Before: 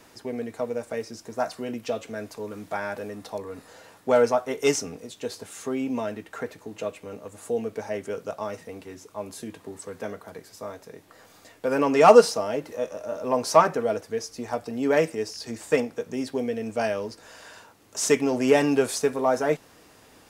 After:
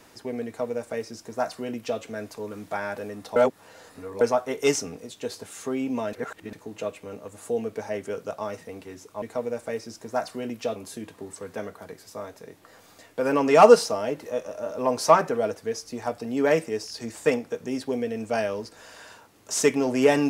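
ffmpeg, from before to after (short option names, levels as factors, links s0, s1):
-filter_complex "[0:a]asplit=7[s0][s1][s2][s3][s4][s5][s6];[s0]atrim=end=3.362[s7];[s1]atrim=start=3.358:end=4.212,asetpts=PTS-STARTPTS,areverse[s8];[s2]atrim=start=4.208:end=6.132[s9];[s3]atrim=start=6.128:end=6.532,asetpts=PTS-STARTPTS,areverse[s10];[s4]atrim=start=6.528:end=9.222[s11];[s5]atrim=start=0.458:end=2.002[s12];[s6]atrim=start=9.218[s13];[s7][s8]acrossfade=d=0.004:c1=hsin:c2=hsin[s14];[s14][s9]acrossfade=d=0.004:c1=hsin:c2=hsin[s15];[s15][s10]acrossfade=d=0.004:c1=hsin:c2=hsin[s16];[s16][s11]acrossfade=d=0.004:c1=hsin:c2=hsin[s17];[s17][s12]acrossfade=d=0.004:c1=hsin:c2=hsin[s18];[s18][s13]acrossfade=d=0.004:c1=hsin:c2=hsin"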